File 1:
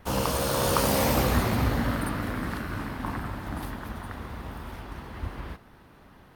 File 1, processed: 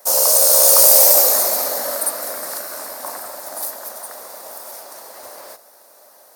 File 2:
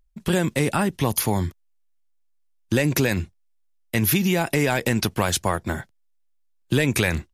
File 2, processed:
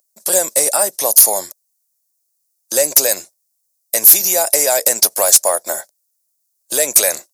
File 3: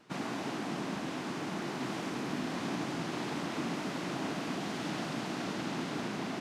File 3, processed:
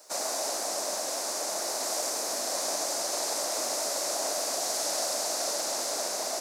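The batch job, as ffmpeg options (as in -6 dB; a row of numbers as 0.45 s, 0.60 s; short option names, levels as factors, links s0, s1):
-af "highpass=f=590:t=q:w=4.9,aexciter=amount=11.6:drive=6.2:freq=4600,asoftclip=type=tanh:threshold=0.944,volume=0.891"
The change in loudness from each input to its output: +17.5 LU, +11.0 LU, +7.5 LU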